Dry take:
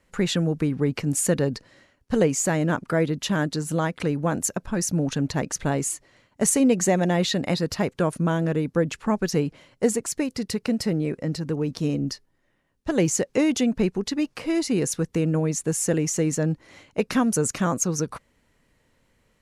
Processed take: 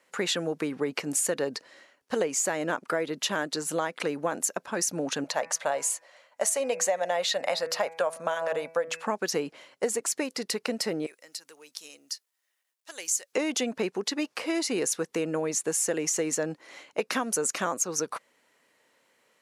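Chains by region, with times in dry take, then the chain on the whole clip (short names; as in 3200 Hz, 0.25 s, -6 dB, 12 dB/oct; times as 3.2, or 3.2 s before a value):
5.24–9.07 resonant low shelf 450 Hz -7.5 dB, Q 3 + de-hum 163.6 Hz, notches 16
11.06–13.33 differentiator + companded quantiser 8-bit
whole clip: HPF 450 Hz 12 dB/oct; compressor, threshold -26 dBFS; gain +2.5 dB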